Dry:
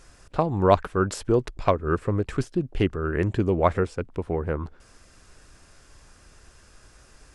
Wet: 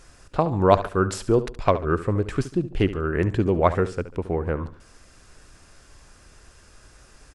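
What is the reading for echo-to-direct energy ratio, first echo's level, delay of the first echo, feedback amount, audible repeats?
−13.5 dB, −14.0 dB, 71 ms, 34%, 3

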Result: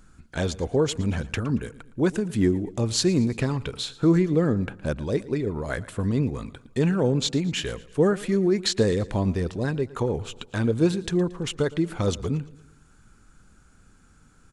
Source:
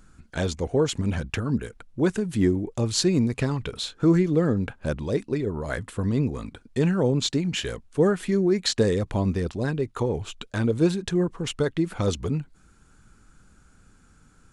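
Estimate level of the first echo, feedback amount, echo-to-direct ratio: −19.5 dB, 49%, −18.5 dB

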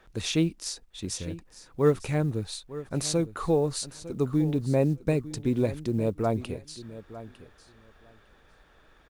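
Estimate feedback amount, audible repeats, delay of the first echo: 15%, 2, 904 ms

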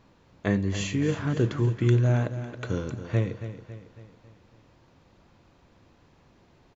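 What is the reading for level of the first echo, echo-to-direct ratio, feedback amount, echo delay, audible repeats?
−11.5 dB, −10.5 dB, 50%, 276 ms, 4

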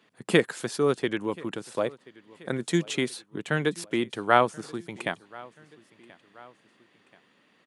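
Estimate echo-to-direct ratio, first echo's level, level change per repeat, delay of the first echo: −22.0 dB, −23.0 dB, −6.0 dB, 1,031 ms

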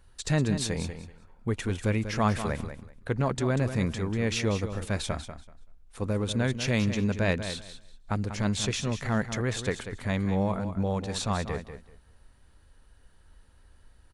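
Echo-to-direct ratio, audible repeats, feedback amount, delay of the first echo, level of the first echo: −10.0 dB, 2, 19%, 191 ms, −10.0 dB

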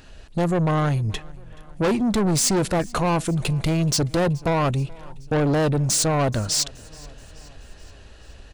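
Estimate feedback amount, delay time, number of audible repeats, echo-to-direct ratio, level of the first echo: 58%, 427 ms, 3, −22.5 dB, −24.0 dB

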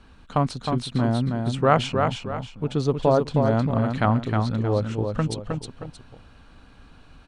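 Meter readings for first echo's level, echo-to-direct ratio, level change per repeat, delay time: −5.0 dB, −4.5 dB, −9.0 dB, 313 ms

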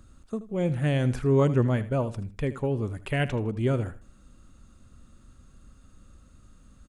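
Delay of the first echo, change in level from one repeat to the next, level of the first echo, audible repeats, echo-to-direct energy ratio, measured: 79 ms, −11.5 dB, −15.5 dB, 2, −15.0 dB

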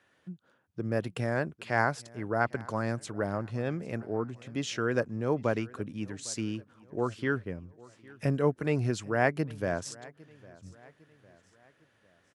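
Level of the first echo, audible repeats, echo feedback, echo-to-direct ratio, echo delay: −22.5 dB, 2, 46%, −21.5 dB, 805 ms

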